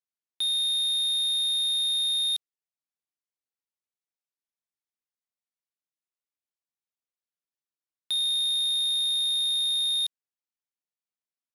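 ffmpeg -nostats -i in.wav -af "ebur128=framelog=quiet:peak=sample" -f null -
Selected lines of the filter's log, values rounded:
Integrated loudness:
  I:         -23.4 LUFS
  Threshold: -33.4 LUFS
Loudness range:
  LRA:         8.2 LU
  Threshold: -46.3 LUFS
  LRA low:   -32.8 LUFS
  LRA high:  -24.6 LUFS
Sample peak:
  Peak:      -23.4 dBFS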